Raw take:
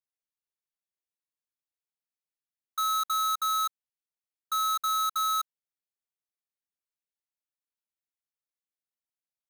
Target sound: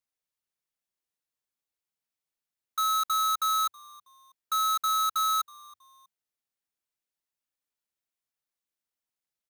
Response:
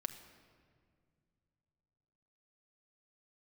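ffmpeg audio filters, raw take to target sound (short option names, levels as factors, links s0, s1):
-filter_complex "[0:a]acrusher=bits=5:mode=log:mix=0:aa=0.000001,asplit=3[s0][s1][s2];[s1]adelay=322,afreqshift=-110,volume=0.0631[s3];[s2]adelay=644,afreqshift=-220,volume=0.0245[s4];[s0][s3][s4]amix=inputs=3:normalize=0,volume=1.26"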